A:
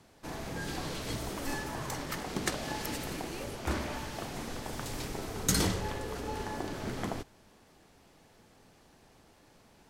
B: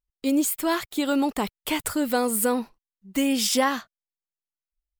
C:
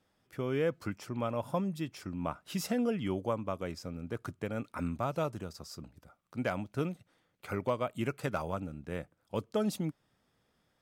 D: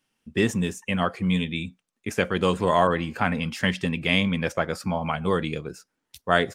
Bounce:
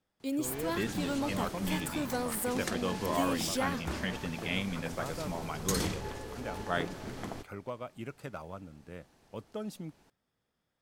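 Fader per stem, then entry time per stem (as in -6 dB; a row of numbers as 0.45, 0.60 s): -4.5, -11.0, -8.0, -12.0 dB; 0.20, 0.00, 0.00, 0.40 s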